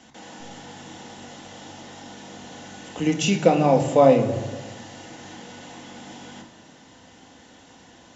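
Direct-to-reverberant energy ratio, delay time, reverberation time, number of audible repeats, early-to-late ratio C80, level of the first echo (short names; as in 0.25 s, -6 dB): 3.0 dB, none, 1.4 s, none, 11.5 dB, none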